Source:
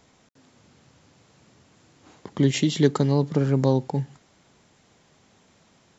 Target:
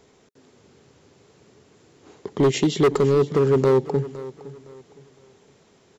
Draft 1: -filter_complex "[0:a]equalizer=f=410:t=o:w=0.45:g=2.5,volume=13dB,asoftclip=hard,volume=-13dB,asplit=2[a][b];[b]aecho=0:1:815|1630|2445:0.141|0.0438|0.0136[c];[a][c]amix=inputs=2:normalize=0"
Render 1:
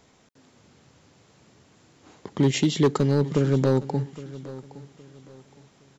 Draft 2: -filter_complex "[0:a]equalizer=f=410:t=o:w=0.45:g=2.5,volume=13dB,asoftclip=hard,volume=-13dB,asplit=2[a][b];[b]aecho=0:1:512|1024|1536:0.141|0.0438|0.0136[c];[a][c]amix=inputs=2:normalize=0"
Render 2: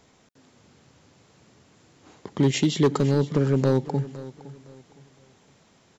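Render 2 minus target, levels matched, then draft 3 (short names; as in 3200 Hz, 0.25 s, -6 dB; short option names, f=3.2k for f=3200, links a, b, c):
500 Hz band -4.0 dB
-filter_complex "[0:a]equalizer=f=410:t=o:w=0.45:g=12.5,volume=13dB,asoftclip=hard,volume=-13dB,asplit=2[a][b];[b]aecho=0:1:512|1024|1536:0.141|0.0438|0.0136[c];[a][c]amix=inputs=2:normalize=0"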